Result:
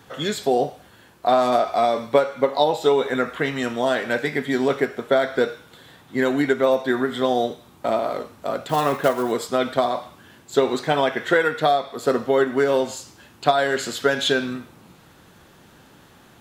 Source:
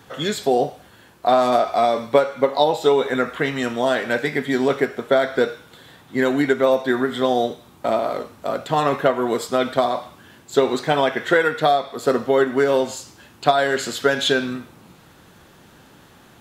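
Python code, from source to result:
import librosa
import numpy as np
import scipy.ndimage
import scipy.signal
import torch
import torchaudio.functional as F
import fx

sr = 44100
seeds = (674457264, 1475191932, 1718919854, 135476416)

y = fx.block_float(x, sr, bits=5, at=(8.69, 9.32))
y = y * 10.0 ** (-1.5 / 20.0)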